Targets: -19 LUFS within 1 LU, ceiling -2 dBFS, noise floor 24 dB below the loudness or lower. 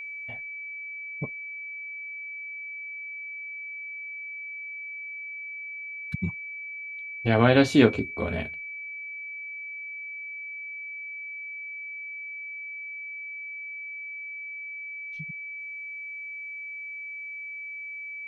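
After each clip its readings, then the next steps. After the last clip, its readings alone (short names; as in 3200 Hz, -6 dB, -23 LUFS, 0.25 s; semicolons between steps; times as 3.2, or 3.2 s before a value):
steady tone 2300 Hz; tone level -35 dBFS; loudness -31.0 LUFS; peak -4.5 dBFS; loudness target -19.0 LUFS
-> notch 2300 Hz, Q 30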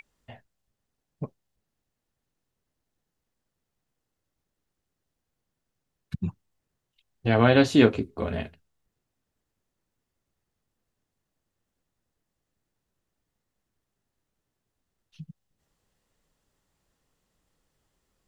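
steady tone none; loudness -23.5 LUFS; peak -4.5 dBFS; loudness target -19.0 LUFS
-> gain +4.5 dB; limiter -2 dBFS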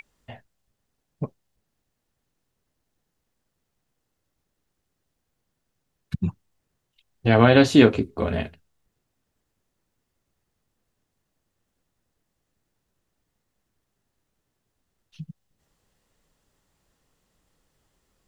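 loudness -19.5 LUFS; peak -2.0 dBFS; noise floor -79 dBFS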